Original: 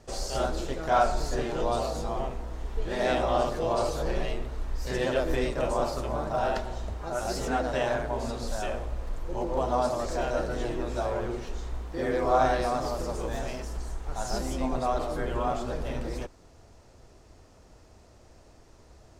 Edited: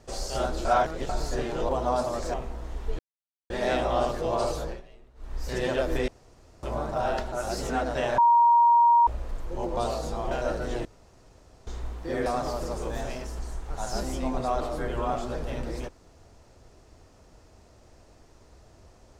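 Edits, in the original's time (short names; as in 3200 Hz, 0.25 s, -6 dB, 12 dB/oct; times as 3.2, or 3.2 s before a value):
0.65–1.09 reverse
1.69–2.23 swap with 9.55–10.2
2.88 insert silence 0.51 s
3.94–4.79 dip -21 dB, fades 0.26 s
5.46–6.01 room tone
6.7–7.1 cut
7.96–8.85 bleep 943 Hz -15 dBFS
10.74–11.56 room tone
12.15–12.64 cut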